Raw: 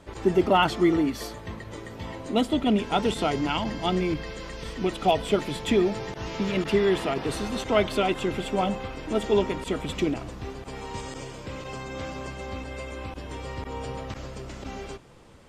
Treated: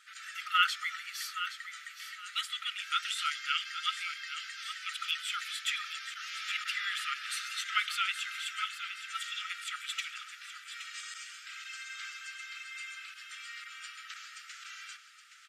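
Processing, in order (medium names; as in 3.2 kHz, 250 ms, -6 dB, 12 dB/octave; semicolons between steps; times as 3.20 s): brick-wall FIR high-pass 1.2 kHz; feedback delay 820 ms, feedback 26%, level -10.5 dB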